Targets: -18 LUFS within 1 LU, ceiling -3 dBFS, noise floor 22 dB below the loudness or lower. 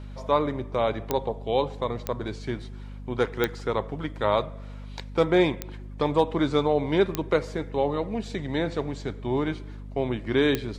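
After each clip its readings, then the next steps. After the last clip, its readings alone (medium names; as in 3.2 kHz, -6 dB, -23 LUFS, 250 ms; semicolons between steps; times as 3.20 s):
clicks found 6; hum 50 Hz; highest harmonic 250 Hz; hum level -36 dBFS; loudness -27.0 LUFS; peak level -8.5 dBFS; loudness target -18.0 LUFS
-> de-click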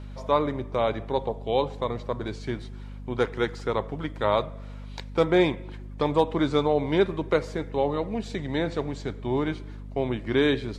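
clicks found 0; hum 50 Hz; highest harmonic 250 Hz; hum level -36 dBFS
-> hum notches 50/100/150/200/250 Hz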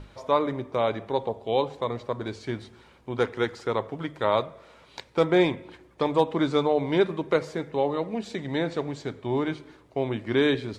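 hum not found; loudness -27.0 LUFS; peak level -8.5 dBFS; loudness target -18.0 LUFS
-> trim +9 dB; peak limiter -3 dBFS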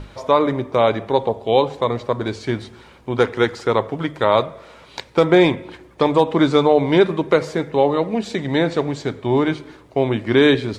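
loudness -18.5 LUFS; peak level -3.0 dBFS; noise floor -46 dBFS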